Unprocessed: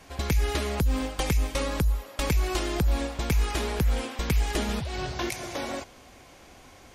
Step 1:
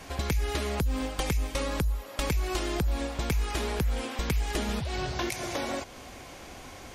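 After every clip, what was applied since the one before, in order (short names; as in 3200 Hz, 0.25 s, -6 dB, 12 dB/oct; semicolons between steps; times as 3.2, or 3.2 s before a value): compressor 2:1, threshold -39 dBFS, peak gain reduction 10.5 dB; gain +6 dB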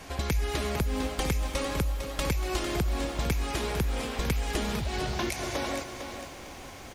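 echo 0.236 s -15.5 dB; lo-fi delay 0.452 s, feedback 35%, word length 9-bit, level -8 dB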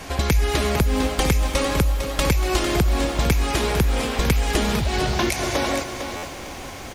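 stuck buffer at 6.16, samples 512, times 5; gain +9 dB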